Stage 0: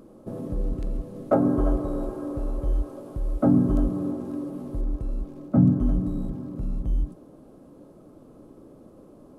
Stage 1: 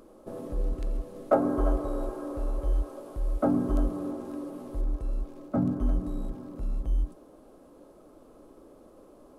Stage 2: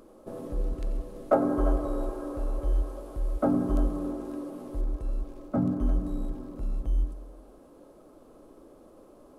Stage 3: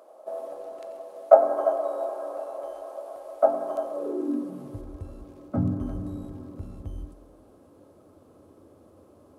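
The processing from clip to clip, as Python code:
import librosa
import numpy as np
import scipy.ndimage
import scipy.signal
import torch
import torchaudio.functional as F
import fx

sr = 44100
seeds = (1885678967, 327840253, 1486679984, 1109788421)

y1 = fx.peak_eq(x, sr, hz=140.0, db=-14.5, octaves=2.0)
y1 = y1 * 10.0 ** (1.5 / 20.0)
y2 = fx.echo_feedback(y1, sr, ms=92, feedback_pct=59, wet_db=-16.0)
y3 = fx.filter_sweep_highpass(y2, sr, from_hz=660.0, to_hz=90.0, start_s=3.89, end_s=4.84, q=5.9)
y3 = y3 * 10.0 ** (-2.0 / 20.0)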